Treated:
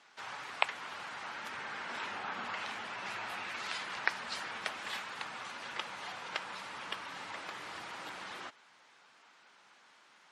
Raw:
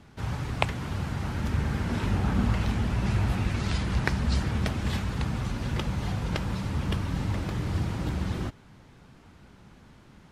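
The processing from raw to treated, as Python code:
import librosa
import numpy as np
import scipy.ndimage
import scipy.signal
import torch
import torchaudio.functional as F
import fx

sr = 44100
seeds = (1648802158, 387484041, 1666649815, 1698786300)

y = scipy.signal.sosfilt(scipy.signal.butter(2, 950.0, 'highpass', fs=sr, output='sos'), x)
y = fx.spec_gate(y, sr, threshold_db=-25, keep='strong')
y = fx.dynamic_eq(y, sr, hz=6100.0, q=0.84, threshold_db=-53.0, ratio=4.0, max_db=-5)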